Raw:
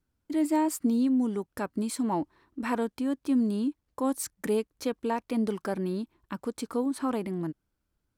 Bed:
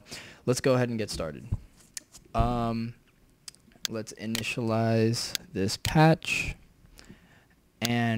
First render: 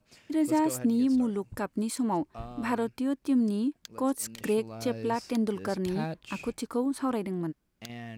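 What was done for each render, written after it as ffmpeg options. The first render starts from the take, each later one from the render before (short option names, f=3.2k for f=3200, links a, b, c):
-filter_complex "[1:a]volume=-15dB[a];[0:a][a]amix=inputs=2:normalize=0"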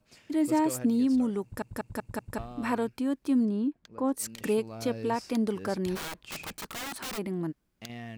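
-filter_complex "[0:a]asettb=1/sr,asplit=3[a][b][c];[a]atrim=end=3.454[d];[b]atrim=start=3.45:end=4.17,asetpts=PTS-STARTPTS,afade=t=in:d=0.004:c=qsin,afade=t=out:st=0.716:d=0.004:c=qsin,lowpass=f=1.4k:p=1[e];[c]atrim=start=4.166[f];[d][e]acrossfade=d=0.004:c1=hsin:c2=qsin[g];[g][f]acrossfade=d=0.004:c1=qsin:c2=hsin,asplit=3[h][i][j];[h]afade=t=out:st=5.95:d=0.02[k];[i]aeval=exprs='(mod(39.8*val(0)+1,2)-1)/39.8':c=same,afade=t=in:st=5.95:d=0.02,afade=t=out:st=7.17:d=0.02[l];[j]afade=t=in:st=7.17:d=0.02[m];[k][l][m]amix=inputs=3:normalize=0,asplit=6[n][o][p][q][r][s];[n]atrim=end=1.622[t];[o]atrim=start=1.428:end=1.622[u];[p]atrim=start=1.428:end=1.622[v];[q]atrim=start=1.428:end=1.622[w];[r]atrim=start=1.428:end=1.622[x];[s]atrim=start=2.378[y];[t][u]acrossfade=d=0.004:c1=hsin:c2=hsin[z];[z][v]acrossfade=d=0.004:c1=hsin:c2=hsin[aa];[aa][w]acrossfade=d=0.004:c1=hsin:c2=hsin[ab];[ab][x]acrossfade=d=0.004:c1=hsin:c2=hsin[ac];[ac][y]acrossfade=d=0.004:c1=hsin:c2=hsin"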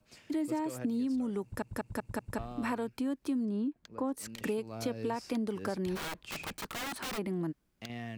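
-filter_complex "[0:a]acrossover=split=270|1100|4000[a][b][c][d];[d]alimiter=level_in=9dB:limit=-24dB:level=0:latency=1:release=150,volume=-9dB[e];[a][b][c][e]amix=inputs=4:normalize=0,acompressor=threshold=-30dB:ratio=6"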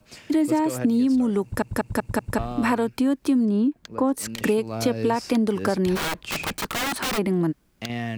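-af "volume=12dB"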